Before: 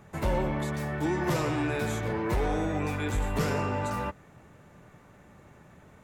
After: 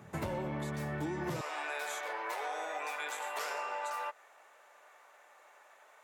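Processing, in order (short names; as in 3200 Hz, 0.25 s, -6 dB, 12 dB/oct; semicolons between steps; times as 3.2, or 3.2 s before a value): HPF 80 Hz 24 dB/oct, from 1.41 s 620 Hz; compressor 6:1, threshold -34 dBFS, peak gain reduction 10.5 dB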